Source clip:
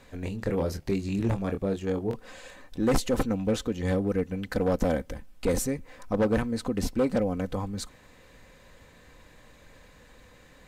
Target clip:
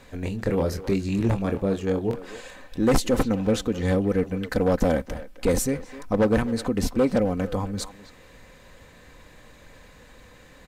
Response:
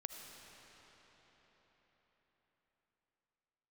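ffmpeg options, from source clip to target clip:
-filter_complex "[0:a]asplit=2[a][b];[b]adelay=260,highpass=300,lowpass=3.4k,asoftclip=type=hard:threshold=-26.5dB,volume=-12dB[c];[a][c]amix=inputs=2:normalize=0,volume=4dB"

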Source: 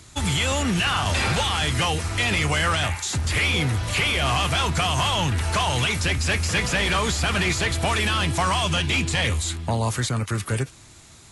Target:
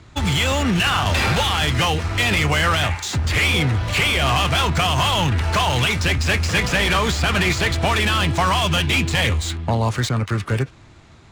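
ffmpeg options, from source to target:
-af "adynamicsmooth=sensitivity=4.5:basefreq=2.7k,volume=4dB"

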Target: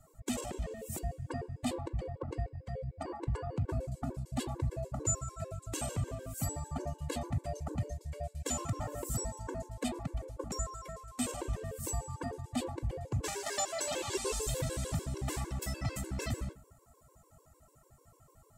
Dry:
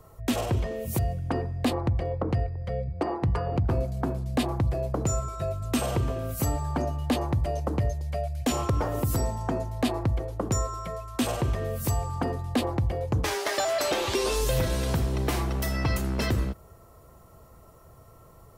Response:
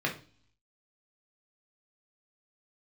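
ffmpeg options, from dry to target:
-filter_complex "[0:a]equalizer=f=7.7k:w=2.1:g=12.5,asplit=2[a][b];[1:a]atrim=start_sample=2205,adelay=19[c];[b][c]afir=irnorm=-1:irlink=0,volume=-18.5dB[d];[a][d]amix=inputs=2:normalize=0,afftfilt=real='re*gt(sin(2*PI*6.7*pts/sr)*(1-2*mod(floor(b*sr/1024/290),2)),0)':imag='im*gt(sin(2*PI*6.7*pts/sr)*(1-2*mod(floor(b*sr/1024/290),2)),0)':win_size=1024:overlap=0.75,volume=-7.5dB"

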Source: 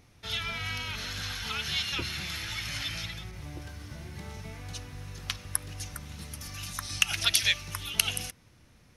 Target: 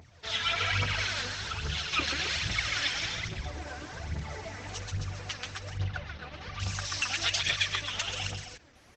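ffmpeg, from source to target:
-filter_complex "[0:a]equalizer=f=250:t=o:w=0.67:g=-5,equalizer=f=630:t=o:w=0.67:g=6,equalizer=f=1.6k:t=o:w=0.67:g=4,aeval=exprs='0.794*(cos(1*acos(clip(val(0)/0.794,-1,1)))-cos(1*PI/2))+0.00501*(cos(2*acos(clip(val(0)/0.794,-1,1)))-cos(2*PI/2))+0.00562*(cos(4*acos(clip(val(0)/0.794,-1,1)))-cos(4*PI/2))+0.0178*(cos(5*acos(clip(val(0)/0.794,-1,1)))-cos(5*PI/2))':c=same,alimiter=limit=-12.5dB:level=0:latency=1:release=250,highpass=f=48:w=0.5412,highpass=f=48:w=1.3066,asettb=1/sr,asplit=3[a][b][c];[a]atrim=end=1.214[d];[b]atrim=start=1.21:end=1.93,asetpts=PTS-STARTPTS,afade=t=in:d=0.004:c=qsin,afade=t=out:st=0.716:d=0.004:c=qsin,equalizer=f=2.4k:w=0.31:g=-8[e];[c]atrim=start=1.926[f];[d][e]acrossfade=d=0.004:c1=hsin:c2=qsin[g];[g][f]acrossfade=d=0.004:c1=qsin:c2=hsin,bandreject=f=60:t=h:w=6,bandreject=f=120:t=h:w=6,bandreject=f=180:t=h:w=6,bandreject=f=240:t=h:w=6,bandreject=f=300:t=h:w=6,bandreject=f=360:t=h:w=6,bandreject=f=420:t=h:w=6,bandreject=f=480:t=h:w=6,bandreject=f=540:t=h:w=6,asettb=1/sr,asplit=3[h][i][j];[h]atrim=end=3.274[k];[i]atrim=start=3.27:end=3.9,asetpts=PTS-STARTPTS,afade=t=in:d=0.004:c=qsin,afade=t=out:st=0.626:d=0.004:c=qsin,asplit=2[l][m];[m]adelay=30,volume=-5dB[n];[l][n]amix=inputs=2:normalize=0,atrim=end_sample=27783[o];[j]atrim=start=3.896[p];[k][o]acrossfade=d=0.004:c1=hsin:c2=qsin[q];[q][p]acrossfade=d=0.004:c1=qsin:c2=hsin,aecho=1:1:134.1|265.3:0.631|0.501,aphaser=in_gain=1:out_gain=1:delay=4.2:decay=0.7:speed=1.2:type=triangular,asettb=1/sr,asplit=3[r][s][t];[r]atrim=end=5.784[u];[s]atrim=start=5.78:end=6.6,asetpts=PTS-STARTPTS,afade=t=in:d=0.004:c=qsin,afade=t=out:st=0.816:d=0.004:c=qsin,lowpass=f=3.9k:w=0.5412,lowpass=f=3.9k:w=1.3066[v];[t]atrim=start=6.596[w];[u][v]acrossfade=d=0.004:c1=hsin:c2=qsin[x];[x][w]acrossfade=d=0.004:c1=qsin:c2=hsin,volume=-1.5dB" -ar 48000 -c:a libopus -b:a 12k

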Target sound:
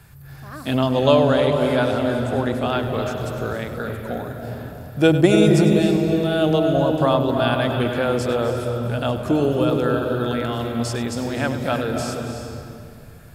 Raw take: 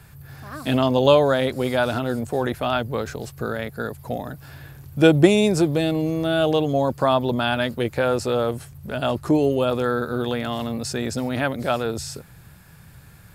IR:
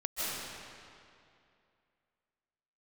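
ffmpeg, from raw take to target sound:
-filter_complex "[0:a]asettb=1/sr,asplit=3[a][b][c];[a]atrim=end=0.904[d];[b]atrim=start=0.9:end=2.68,asetpts=PTS-STARTPTS,afade=t=in:d=0.004:c=qsin,afade=t=out:st=1.776:d=0.004:c=qsin,lowpass=11k[e];[c]atrim=start=2.676[f];[d][e]acrossfade=d=0.004:c1=hsin:c2=qsin[g];[g][f]acrossfade=d=0.004:c1=qsin:c2=hsin,asplit=2[h][i];[i]lowshelf=f=210:g=11.5[j];[1:a]atrim=start_sample=2205,adelay=100[k];[j][k]afir=irnorm=-1:irlink=0,volume=-11dB[l];[h][l]amix=inputs=2:normalize=0,volume=-1dB"

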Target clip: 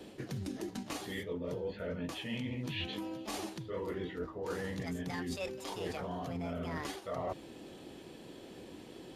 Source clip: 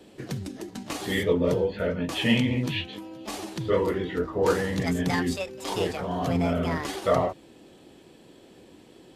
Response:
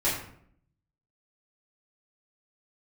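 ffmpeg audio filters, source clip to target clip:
-af "bandreject=f=7.9k:w=18,areverse,acompressor=threshold=-37dB:ratio=12,areverse,volume=1.5dB"

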